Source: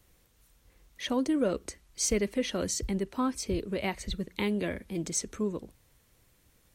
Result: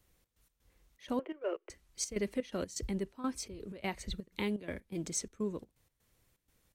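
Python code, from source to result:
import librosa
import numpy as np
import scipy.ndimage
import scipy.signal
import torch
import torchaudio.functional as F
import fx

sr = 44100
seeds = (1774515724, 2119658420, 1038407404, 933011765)

p1 = fx.cheby1_bandpass(x, sr, low_hz=340.0, high_hz=3000.0, order=5, at=(1.19, 1.7))
p2 = fx.step_gate(p1, sr, bpm=125, pattern='xx.x.xxx.', floor_db=-12.0, edge_ms=4.5)
p3 = fx.backlash(p2, sr, play_db=-44.5)
p4 = p2 + F.gain(torch.from_numpy(p3), -10.0).numpy()
y = F.gain(torch.from_numpy(p4), -7.0).numpy()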